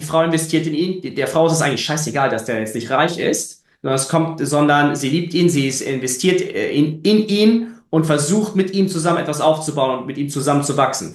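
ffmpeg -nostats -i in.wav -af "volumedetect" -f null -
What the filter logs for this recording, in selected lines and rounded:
mean_volume: -17.5 dB
max_volume: -1.2 dB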